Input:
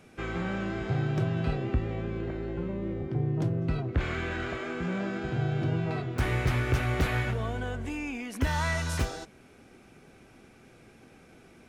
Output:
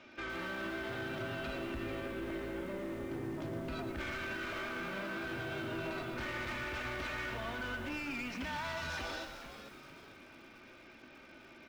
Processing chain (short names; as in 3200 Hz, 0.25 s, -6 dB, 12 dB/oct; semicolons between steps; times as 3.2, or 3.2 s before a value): Bessel low-pass 3100 Hz, order 8; tilt +3 dB/oct; comb 3.3 ms, depth 72%; limiter -29 dBFS, peak gain reduction 10.5 dB; soft clip -35.5 dBFS, distortion -14 dB; frequency-shifting echo 0.445 s, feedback 44%, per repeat -110 Hz, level -11 dB; lo-fi delay 0.116 s, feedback 55%, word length 9-bit, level -8.5 dB